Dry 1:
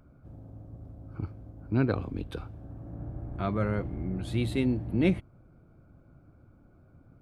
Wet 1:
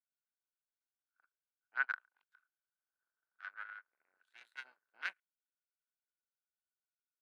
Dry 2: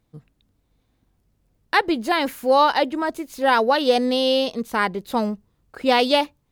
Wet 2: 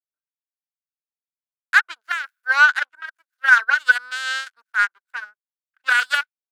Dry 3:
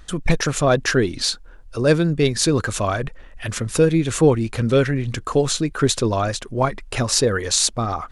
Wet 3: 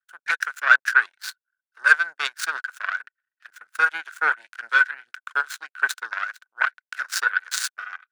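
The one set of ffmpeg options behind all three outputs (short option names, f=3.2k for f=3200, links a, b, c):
-af "aeval=exprs='0.891*(cos(1*acos(clip(val(0)/0.891,-1,1)))-cos(1*PI/2))+0.0631*(cos(3*acos(clip(val(0)/0.891,-1,1)))-cos(3*PI/2))+0.0562*(cos(5*acos(clip(val(0)/0.891,-1,1)))-cos(5*PI/2))+0.0224*(cos(6*acos(clip(val(0)/0.891,-1,1)))-cos(6*PI/2))+0.141*(cos(7*acos(clip(val(0)/0.891,-1,1)))-cos(7*PI/2))':c=same,highpass=f=1.5k:t=q:w=14,volume=-4dB"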